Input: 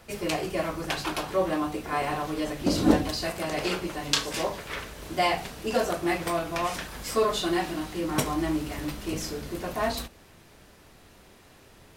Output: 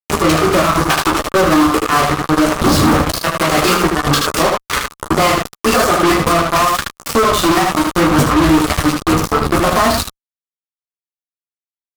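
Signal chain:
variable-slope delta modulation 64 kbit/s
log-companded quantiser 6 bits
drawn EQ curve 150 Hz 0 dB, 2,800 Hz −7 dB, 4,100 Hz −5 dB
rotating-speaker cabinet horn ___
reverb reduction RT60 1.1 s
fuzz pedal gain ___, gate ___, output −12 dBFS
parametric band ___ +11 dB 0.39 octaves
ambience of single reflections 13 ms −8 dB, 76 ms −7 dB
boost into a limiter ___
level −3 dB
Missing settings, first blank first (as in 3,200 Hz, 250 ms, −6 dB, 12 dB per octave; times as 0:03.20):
1 Hz, 44 dB, −38 dBFS, 1,200 Hz, +11.5 dB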